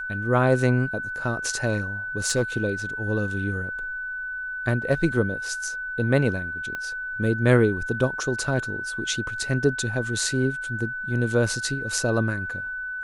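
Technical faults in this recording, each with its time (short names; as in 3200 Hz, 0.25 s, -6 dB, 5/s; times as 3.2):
tone 1500 Hz -29 dBFS
2.25–2.42 clipped -16.5 dBFS
6.75 pop -18 dBFS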